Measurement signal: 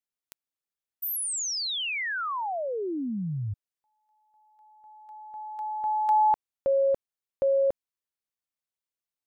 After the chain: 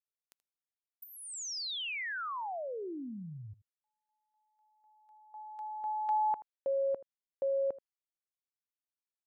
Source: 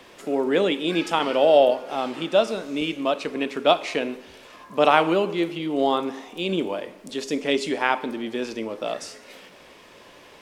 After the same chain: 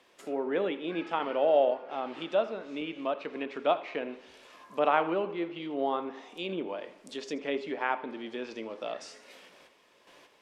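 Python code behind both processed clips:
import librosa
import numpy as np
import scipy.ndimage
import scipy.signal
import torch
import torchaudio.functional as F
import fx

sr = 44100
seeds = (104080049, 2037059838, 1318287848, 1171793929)

y = fx.gate_hold(x, sr, open_db=-36.0, close_db=-43.0, hold_ms=164.0, range_db=-7, attack_ms=0.92, release_ms=29.0)
y = fx.env_lowpass_down(y, sr, base_hz=2100.0, full_db=-21.0)
y = fx.low_shelf(y, sr, hz=170.0, db=-11.5)
y = y + 10.0 ** (-18.5 / 20.0) * np.pad(y, (int(80 * sr / 1000.0), 0))[:len(y)]
y = y * 10.0 ** (-7.0 / 20.0)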